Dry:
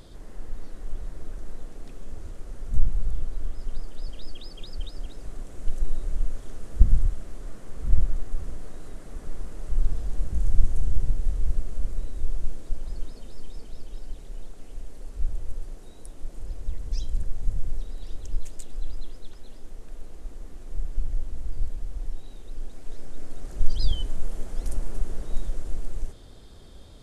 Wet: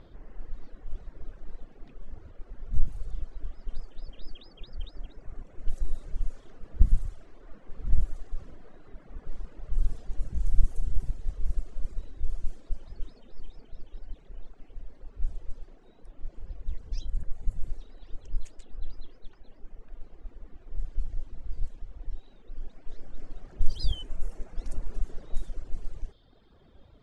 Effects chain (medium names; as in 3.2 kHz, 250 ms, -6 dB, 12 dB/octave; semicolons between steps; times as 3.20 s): de-hum 45.98 Hz, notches 13; reverb removal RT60 1.7 s; level-controlled noise filter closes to 2.3 kHz, open at -13 dBFS; trim -2.5 dB